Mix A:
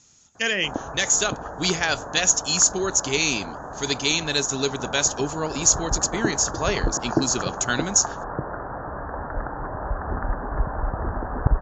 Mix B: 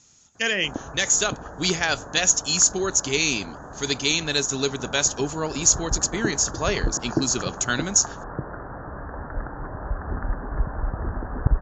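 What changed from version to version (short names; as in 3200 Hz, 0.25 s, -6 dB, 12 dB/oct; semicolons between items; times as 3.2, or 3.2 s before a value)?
background: add bell 800 Hz -6.5 dB 1.8 oct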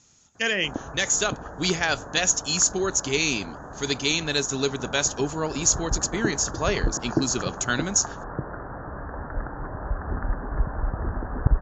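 speech: add high shelf 3600 Hz -4 dB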